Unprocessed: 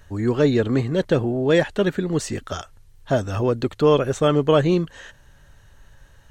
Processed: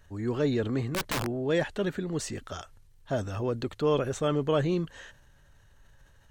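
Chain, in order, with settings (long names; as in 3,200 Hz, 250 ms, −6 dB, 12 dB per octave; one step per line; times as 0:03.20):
transient designer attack −1 dB, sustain +4 dB
0:00.91–0:01.40: wrap-around overflow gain 15 dB
level −9 dB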